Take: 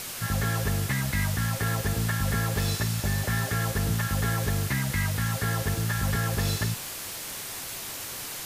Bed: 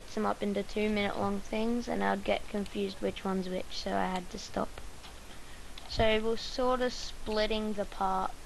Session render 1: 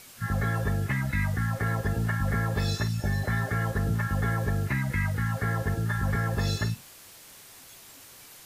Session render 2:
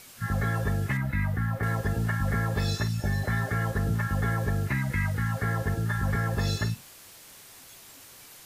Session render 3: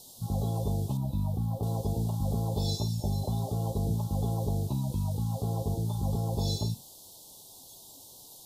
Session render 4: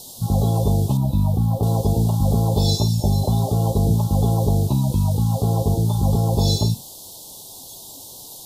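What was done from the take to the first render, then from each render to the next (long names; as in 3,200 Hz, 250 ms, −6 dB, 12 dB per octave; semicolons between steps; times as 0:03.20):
noise reduction from a noise print 13 dB
0:00.97–0:01.63: parametric band 6,800 Hz −10.5 dB 2.1 octaves
elliptic band-stop filter 890–3,600 Hz, stop band 60 dB; low-shelf EQ 170 Hz −3 dB
level +11.5 dB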